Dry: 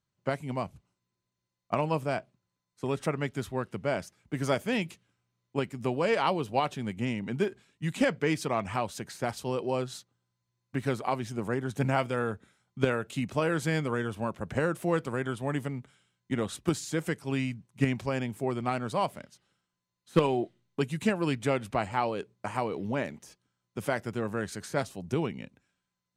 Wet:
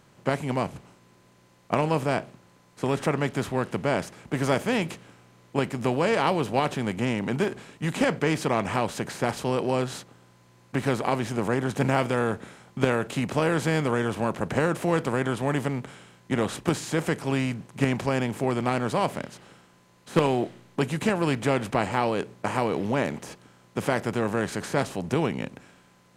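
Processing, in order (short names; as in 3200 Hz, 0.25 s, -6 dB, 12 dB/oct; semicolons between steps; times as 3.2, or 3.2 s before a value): per-bin compression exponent 0.6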